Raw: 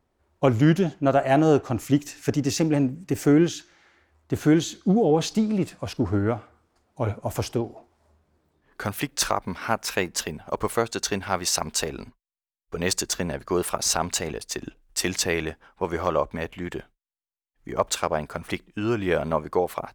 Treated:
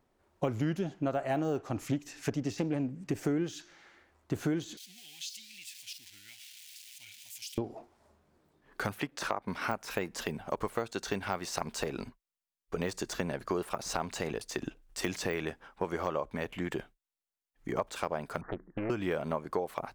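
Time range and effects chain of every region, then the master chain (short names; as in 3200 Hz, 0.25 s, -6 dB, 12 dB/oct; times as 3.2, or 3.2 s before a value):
1.77–3.2 high shelf 7900 Hz -7.5 dB + Doppler distortion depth 0.14 ms
4.77–7.58 zero-crossing step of -35.5 dBFS + inverse Chebyshev high-pass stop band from 1300 Hz + compressor 2:1, threshold -45 dBFS
8.98–9.48 HPF 170 Hz 6 dB/oct + high shelf 3600 Hz -10.5 dB
18.41–18.9 steep low-pass 1800 Hz 96 dB/oct + compressor 4:1, threshold -29 dBFS + Doppler distortion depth 0.8 ms
whole clip: de-esser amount 80%; bell 66 Hz -14 dB 0.55 oct; compressor 4:1, threshold -30 dBFS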